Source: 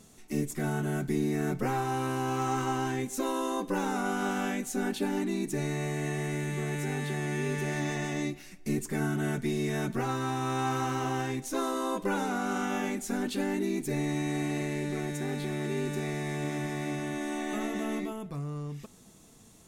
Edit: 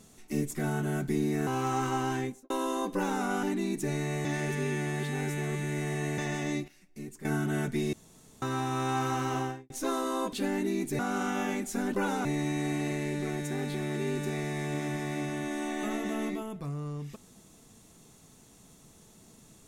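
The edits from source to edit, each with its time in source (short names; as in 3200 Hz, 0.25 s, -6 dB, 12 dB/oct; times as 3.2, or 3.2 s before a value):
1.47–2.22 cut
2.93–3.25 studio fade out
4.18–5.13 cut
5.95–7.88 reverse
8.38–8.95 gain -11.5 dB
9.63–10.12 room tone
11.07–11.4 studio fade out
12.03–12.34 swap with 13.29–13.95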